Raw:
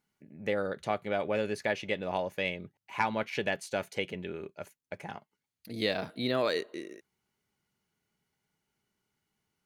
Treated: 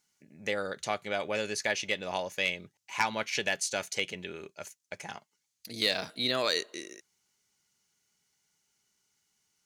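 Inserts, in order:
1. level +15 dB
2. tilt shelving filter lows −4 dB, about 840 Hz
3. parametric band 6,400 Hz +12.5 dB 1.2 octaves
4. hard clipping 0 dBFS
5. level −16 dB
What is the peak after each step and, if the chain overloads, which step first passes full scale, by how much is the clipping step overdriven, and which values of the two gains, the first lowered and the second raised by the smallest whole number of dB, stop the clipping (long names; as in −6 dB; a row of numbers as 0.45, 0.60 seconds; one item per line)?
−0.5, +2.0, +5.5, 0.0, −16.0 dBFS
step 2, 5.5 dB
step 1 +9 dB, step 5 −10 dB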